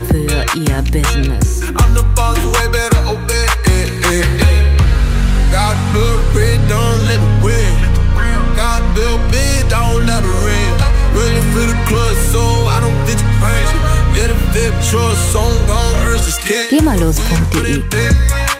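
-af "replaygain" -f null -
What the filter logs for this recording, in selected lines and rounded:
track_gain = -1.6 dB
track_peak = 0.585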